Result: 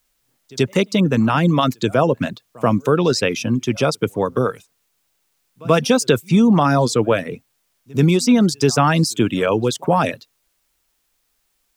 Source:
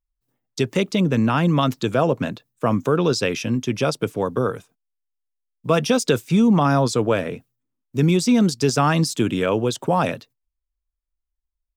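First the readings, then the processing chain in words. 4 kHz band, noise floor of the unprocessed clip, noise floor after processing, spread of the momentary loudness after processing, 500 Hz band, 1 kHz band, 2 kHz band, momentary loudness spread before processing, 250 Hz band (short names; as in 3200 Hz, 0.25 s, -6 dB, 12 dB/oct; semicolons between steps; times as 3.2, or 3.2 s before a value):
+3.0 dB, -82 dBFS, -69 dBFS, 9 LU, +3.0 dB, +3.0 dB, +3.0 dB, 9 LU, +2.5 dB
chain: pre-echo 84 ms -24 dB; reverb removal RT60 0.54 s; requantised 12-bit, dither triangular; gain +3.5 dB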